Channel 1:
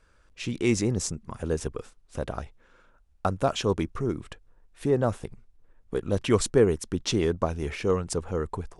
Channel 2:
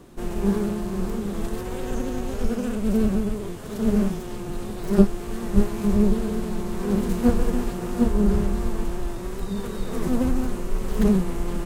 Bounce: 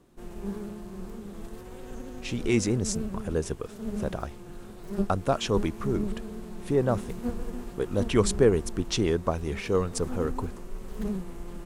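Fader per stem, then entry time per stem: −0.5, −12.5 decibels; 1.85, 0.00 seconds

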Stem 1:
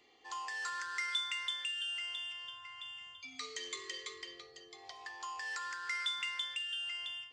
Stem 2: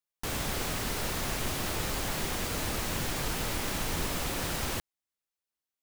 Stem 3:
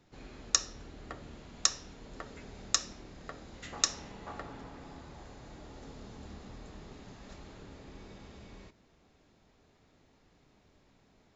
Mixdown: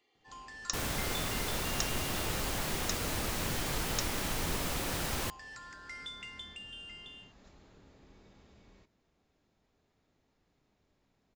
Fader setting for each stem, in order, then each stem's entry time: −8.0, −2.0, −9.5 decibels; 0.00, 0.50, 0.15 seconds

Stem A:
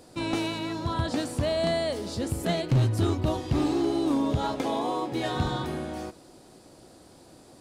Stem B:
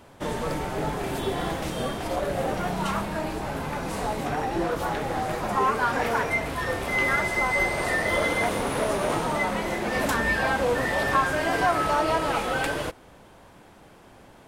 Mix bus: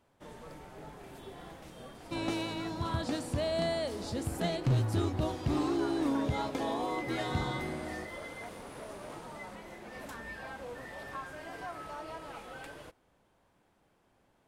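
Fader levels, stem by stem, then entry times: −5.5, −19.5 decibels; 1.95, 0.00 seconds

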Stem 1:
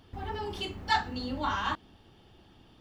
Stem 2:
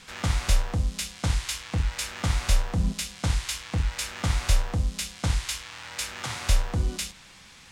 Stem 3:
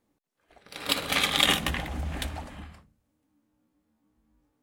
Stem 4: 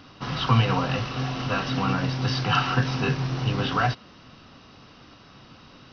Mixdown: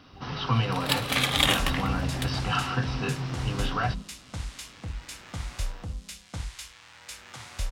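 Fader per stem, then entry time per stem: −9.5, −10.0, −0.5, −5.0 decibels; 0.00, 1.10, 0.00, 0.00 seconds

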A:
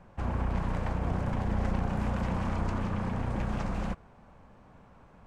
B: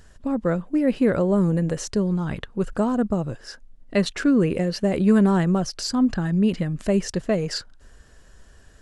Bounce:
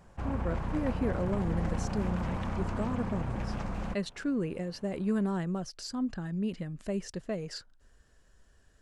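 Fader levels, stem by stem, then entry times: −3.0, −12.5 decibels; 0.00, 0.00 seconds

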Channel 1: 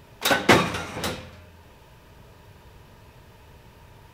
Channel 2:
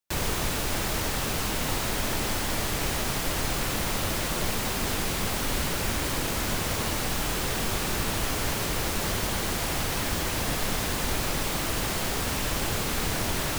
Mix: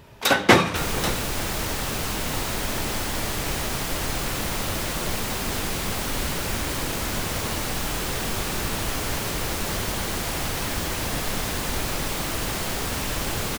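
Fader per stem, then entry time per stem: +1.5, +1.0 decibels; 0.00, 0.65 seconds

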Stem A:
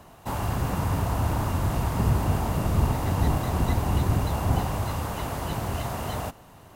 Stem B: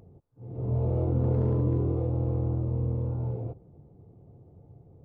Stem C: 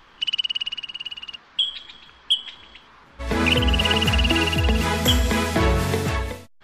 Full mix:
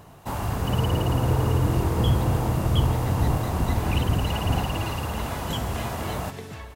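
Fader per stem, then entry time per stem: 0.0, +0.5, −15.0 decibels; 0.00, 0.00, 0.45 seconds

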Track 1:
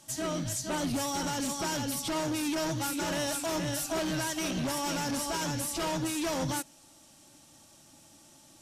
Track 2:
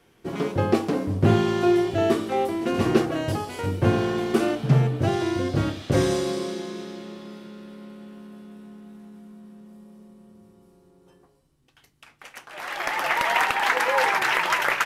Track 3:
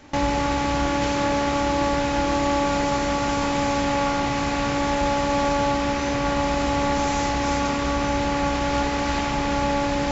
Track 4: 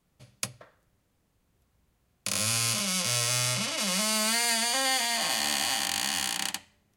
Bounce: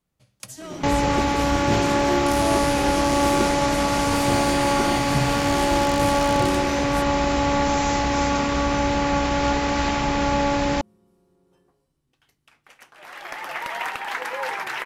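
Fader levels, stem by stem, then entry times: −4.5, −7.0, +1.5, −6.5 decibels; 0.40, 0.45, 0.70, 0.00 seconds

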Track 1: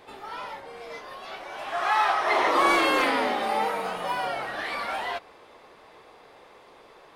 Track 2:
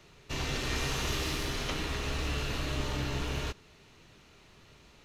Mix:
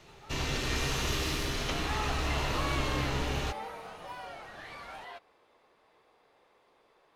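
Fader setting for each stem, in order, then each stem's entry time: −14.5, +1.0 decibels; 0.00, 0.00 seconds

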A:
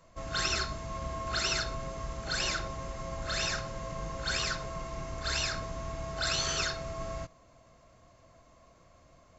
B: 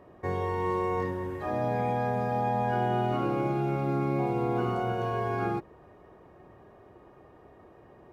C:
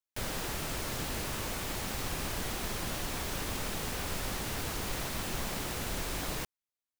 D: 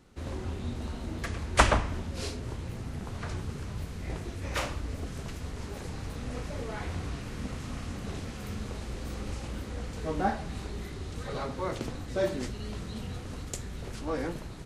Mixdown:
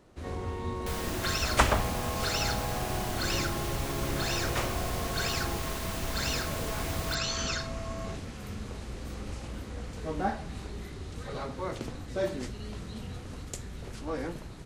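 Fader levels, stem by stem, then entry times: −1.5, −9.5, −1.0, −2.0 decibels; 0.90, 0.00, 0.70, 0.00 seconds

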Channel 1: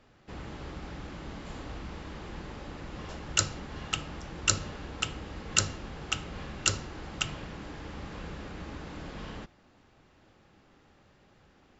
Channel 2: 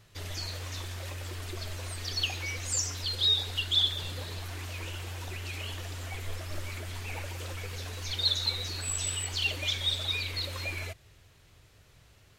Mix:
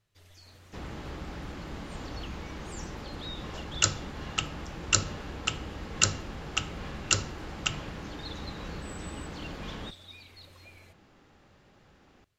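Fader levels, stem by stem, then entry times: +1.5, −18.0 decibels; 0.45, 0.00 seconds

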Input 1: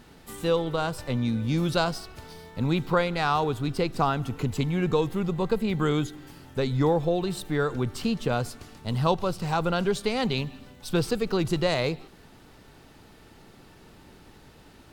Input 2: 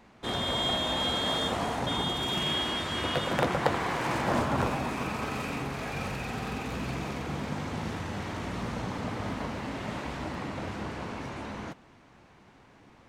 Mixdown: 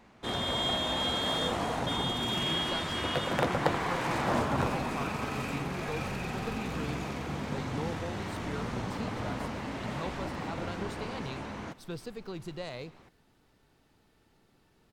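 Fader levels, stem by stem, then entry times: −15.0, −1.5 decibels; 0.95, 0.00 seconds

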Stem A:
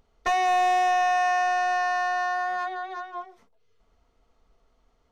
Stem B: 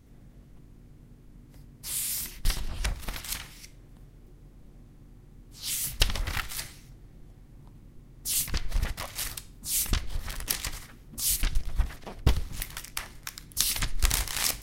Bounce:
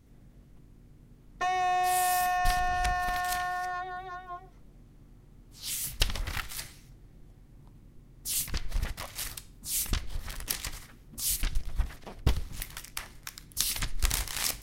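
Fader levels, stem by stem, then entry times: −5.5, −3.0 decibels; 1.15, 0.00 seconds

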